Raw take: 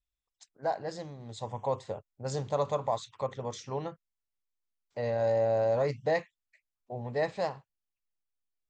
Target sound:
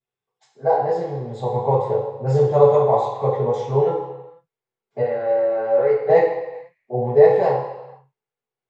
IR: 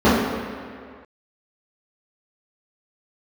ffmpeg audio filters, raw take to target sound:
-filter_complex "[0:a]asettb=1/sr,asplit=3[a][b][c];[a]atrim=end=5.014[d];[b]atrim=start=5.01:end=6.09,asetpts=PTS-STARTPTS,afade=t=in:d=0.004:c=qsin,afade=t=out:st=1.076:d=0.004:c=qsin,highpass=420,equalizer=f=430:t=q:w=4:g=-4,equalizer=f=660:t=q:w=4:g=-10,equalizer=f=970:t=q:w=4:g=-9,equalizer=f=1.4k:t=q:w=4:g=5,equalizer=f=2.5k:t=q:w=4:g=-4,equalizer=f=3.7k:t=q:w=4:g=-5,lowpass=f=4k:w=0.5412,lowpass=f=4k:w=1.3066[e];[c]atrim=start=6.086[f];[d][e]acrossfade=d=0.004:c1=hsin:c2=qsin[g];[g][f]acrossfade=d=0.004:c1=qsin:c2=hsin[h];[1:a]atrim=start_sample=2205,asetrate=83790,aresample=44100[i];[h][i]afir=irnorm=-1:irlink=0,volume=-14.5dB"

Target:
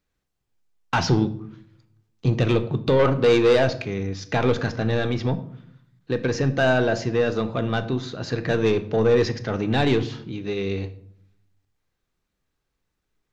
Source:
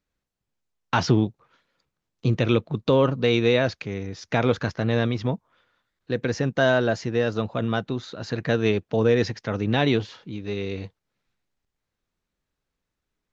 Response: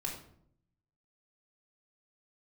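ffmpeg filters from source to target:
-filter_complex "[0:a]asettb=1/sr,asplit=3[a][b][c];[a]atrim=end=2.994[d];[b]atrim=start=2.99:end=3.64,asetpts=PTS-STARTPTS,afade=t=in:d=0.004:c=qsin,afade=t=out:st=0.646:d=0.004:c=qsin,equalizer=f=810:t=o:w=2.5:g=6[e];[c]atrim=start=3.636[f];[d][e]acrossfade=d=0.004:c1=hsin:c2=qsin[g];[g][f]acrossfade=d=0.004:c1=qsin:c2=hsin,asoftclip=type=tanh:threshold=-15dB,asplit=2[h][i];[1:a]atrim=start_sample=2205[j];[i][j]afir=irnorm=-1:irlink=0,volume=-6dB[k];[h][k]amix=inputs=2:normalize=0"

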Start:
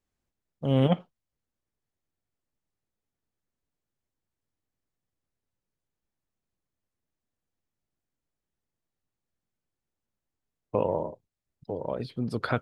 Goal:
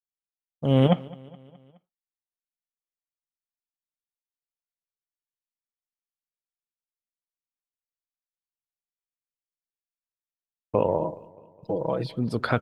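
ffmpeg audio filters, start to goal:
-filter_complex "[0:a]asettb=1/sr,asplit=3[a][b][c];[a]atrim=end=11.014[d];[b]atrim=start=11.01:end=12.12,asetpts=PTS-STARTPTS,afade=t=in:d=0.004:c=qsin,afade=t=out:st=1.106:d=0.004:c=qsin,aecho=1:1:6.1:0.84,atrim=end_sample=48951[e];[c]atrim=start=12.116[f];[d][e]acrossfade=d=0.004:c1=hsin:c2=qsin[g];[g][f]acrossfade=d=0.004:c1=qsin:c2=hsin,agate=range=-33dB:threshold=-50dB:ratio=3:detection=peak,aecho=1:1:210|420|630|840:0.0794|0.0445|0.0249|0.0139,volume=3.5dB"

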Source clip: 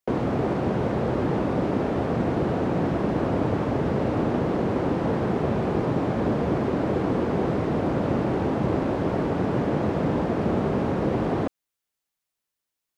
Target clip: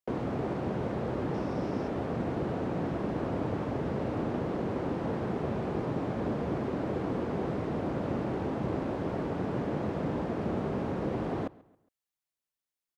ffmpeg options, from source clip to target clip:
-filter_complex "[0:a]asettb=1/sr,asplit=3[a][b][c];[a]atrim=end=1.344[d];[b]atrim=start=1.34:end=1.88,asetpts=PTS-STARTPTS,afade=t=in:d=0.004:c=qsin,afade=t=out:st=0.536:d=0.004:c=qsin,equalizer=f=5.4k:t=o:w=0.3:g=10[e];[c]atrim=start=1.876[f];[d][e]acrossfade=d=0.004:c1=hsin:c2=qsin[g];[g][f]acrossfade=d=0.004:c1=qsin:c2=hsin,asplit=2[h][i];[i]adelay=137,lowpass=f=4.4k:p=1,volume=-22dB,asplit=2[j][k];[k]adelay=137,lowpass=f=4.4k:p=1,volume=0.39,asplit=2[l][m];[m]adelay=137,lowpass=f=4.4k:p=1,volume=0.39[n];[h][j][l][n]amix=inputs=4:normalize=0,volume=-8dB"

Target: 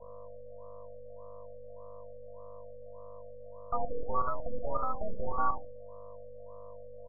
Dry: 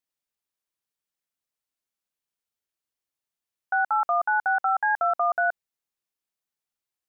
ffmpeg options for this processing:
-filter_complex "[0:a]highpass=f=360:w=0.5412,highpass=f=360:w=1.3066,acrossover=split=740|840[a][b][c];[a]acrusher=bits=4:mix=0:aa=0.000001[d];[d][b][c]amix=inputs=3:normalize=0,asplit=2[e][f];[f]asetrate=29433,aresample=44100,atempo=1.49831,volume=-11dB[g];[e][g]amix=inputs=2:normalize=0,aeval=exprs='val(0)+0.00708*(sin(2*PI*50*n/s)+sin(2*PI*2*50*n/s)/2+sin(2*PI*3*50*n/s)/3+sin(2*PI*4*50*n/s)/4+sin(2*PI*5*50*n/s)/5)':c=same,afreqshift=440,aresample=11025,aeval=exprs='max(val(0),0)':c=same,aresample=44100,asplit=2[h][i];[i]adelay=71,lowpass=f=2k:p=1,volume=-6dB,asplit=2[j][k];[k]adelay=71,lowpass=f=2k:p=1,volume=0.32,asplit=2[l][m];[m]adelay=71,lowpass=f=2k:p=1,volume=0.32,asplit=2[n][o];[o]adelay=71,lowpass=f=2k:p=1,volume=0.32[p];[h][j][l][n][p]amix=inputs=5:normalize=0,afftfilt=real='re*lt(b*sr/1024,590*pow(1500/590,0.5+0.5*sin(2*PI*1.7*pts/sr)))':imag='im*lt(b*sr/1024,590*pow(1500/590,0.5+0.5*sin(2*PI*1.7*pts/sr)))':win_size=1024:overlap=0.75"

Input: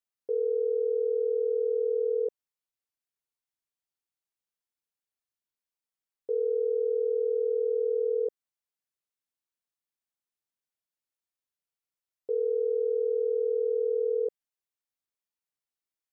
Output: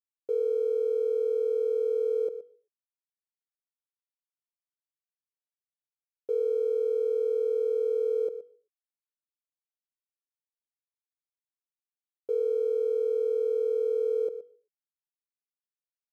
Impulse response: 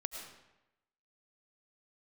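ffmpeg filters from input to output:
-filter_complex "[0:a]aeval=exprs='sgn(val(0))*max(abs(val(0))-0.00126,0)':c=same,aecho=1:1:120:0.224,asplit=2[a][b];[1:a]atrim=start_sample=2205,afade=t=out:st=0.32:d=0.01,atrim=end_sample=14553[c];[b][c]afir=irnorm=-1:irlink=0,volume=-17dB[d];[a][d]amix=inputs=2:normalize=0"

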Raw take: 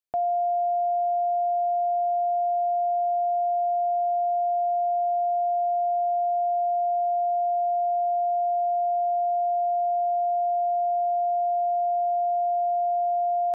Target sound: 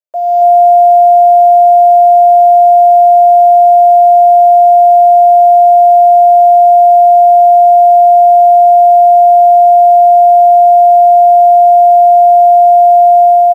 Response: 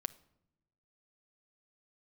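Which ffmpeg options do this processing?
-filter_complex "[0:a]asplit=2[a][b];[b]acrusher=bits=6:mix=0:aa=0.000001,volume=-9dB[c];[a][c]amix=inputs=2:normalize=0,asuperstop=centerf=780:order=8:qfactor=5.5,aecho=1:1:277:0.335,acrusher=bits=7:mode=log:mix=0:aa=0.000001,equalizer=f=750:w=5.2:g=7,dynaudnorm=f=210:g=3:m=11.5dB,highpass=f=590:t=q:w=7,volume=-8dB"

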